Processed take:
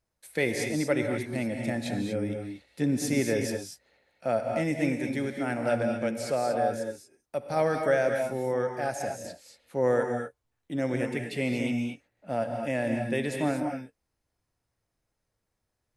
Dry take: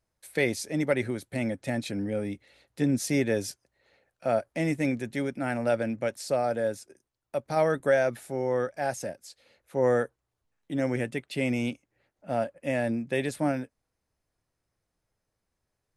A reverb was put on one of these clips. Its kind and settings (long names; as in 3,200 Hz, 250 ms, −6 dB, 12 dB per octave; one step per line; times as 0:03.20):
reverb whose tail is shaped and stops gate 260 ms rising, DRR 3.5 dB
level −1.5 dB